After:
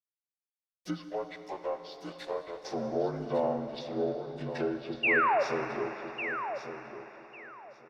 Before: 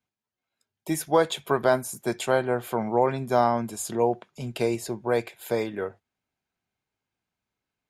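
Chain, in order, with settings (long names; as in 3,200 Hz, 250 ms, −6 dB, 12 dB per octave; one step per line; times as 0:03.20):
partials spread apart or drawn together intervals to 80%
high-shelf EQ 2,300 Hz +7.5 dB
in parallel at −2 dB: downward compressor, threshold −30 dBFS, peak gain reduction 14 dB
0:01.09–0:02.65: on the sum: four-pole ladder high-pass 410 Hz, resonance 30%
dead-zone distortion −39 dBFS
treble cut that deepens with the level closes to 1,500 Hz, closed at −23 dBFS
0:05.03–0:05.43: sound drawn into the spectrogram fall 520–2,900 Hz −17 dBFS
repeating echo 1,150 ms, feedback 19%, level −9.5 dB
on a send at −8 dB: convolution reverb RT60 4.2 s, pre-delay 8 ms
on the sum: level −8.5 dB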